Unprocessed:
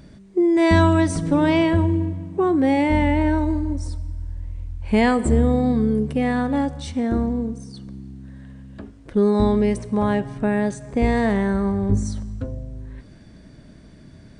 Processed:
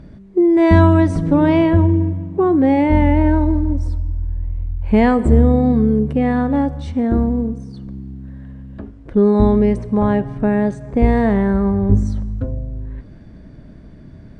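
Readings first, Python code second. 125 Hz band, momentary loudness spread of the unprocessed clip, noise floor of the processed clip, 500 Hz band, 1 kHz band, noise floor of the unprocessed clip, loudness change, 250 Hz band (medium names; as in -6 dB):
+6.5 dB, 17 LU, -40 dBFS, +4.0 dB, +3.0 dB, -46 dBFS, +4.5 dB, +4.5 dB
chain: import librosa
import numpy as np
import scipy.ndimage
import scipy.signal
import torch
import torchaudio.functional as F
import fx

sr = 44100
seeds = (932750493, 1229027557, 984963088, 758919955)

y = fx.lowpass(x, sr, hz=1300.0, slope=6)
y = fx.low_shelf(y, sr, hz=63.0, db=6.0)
y = y * librosa.db_to_amplitude(4.5)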